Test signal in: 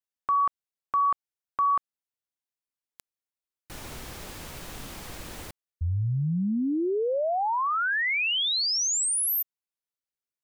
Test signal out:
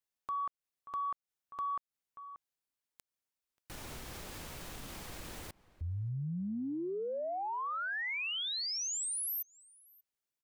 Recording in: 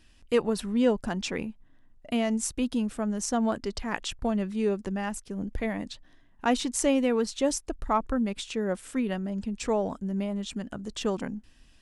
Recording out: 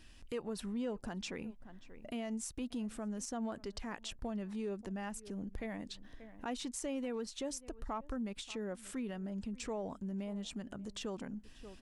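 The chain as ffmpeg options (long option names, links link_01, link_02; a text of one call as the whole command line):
ffmpeg -i in.wav -filter_complex "[0:a]aeval=exprs='0.316*(cos(1*acos(clip(val(0)/0.316,-1,1)))-cos(1*PI/2))+0.00708*(cos(5*acos(clip(val(0)/0.316,-1,1)))-cos(5*PI/2))':channel_layout=same,asplit=2[link_01][link_02];[link_02]adelay=583.1,volume=-25dB,highshelf=frequency=4000:gain=-13.1[link_03];[link_01][link_03]amix=inputs=2:normalize=0,acompressor=threshold=-41dB:ratio=2.5:attack=0.21:release=286:knee=1:detection=peak" out.wav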